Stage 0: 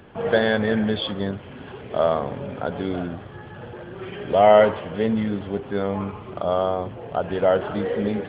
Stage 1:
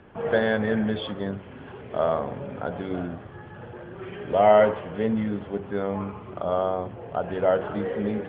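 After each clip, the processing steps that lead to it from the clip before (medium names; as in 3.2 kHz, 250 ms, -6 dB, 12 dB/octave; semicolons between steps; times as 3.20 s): low-pass 2.7 kHz 12 dB/octave; de-hum 47.92 Hz, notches 17; trim -2.5 dB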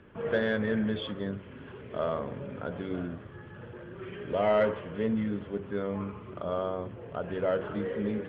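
peaking EQ 770 Hz -10 dB 0.47 oct; in parallel at -4 dB: saturation -18 dBFS, distortion -15 dB; on the sum: trim -7.5 dB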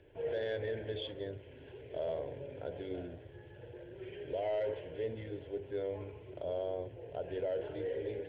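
static phaser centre 500 Hz, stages 4; peak limiter -25.5 dBFS, peak gain reduction 8 dB; trim -2.5 dB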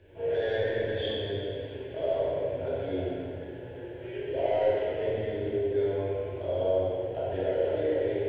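plate-style reverb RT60 2.5 s, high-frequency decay 0.8×, DRR -9 dB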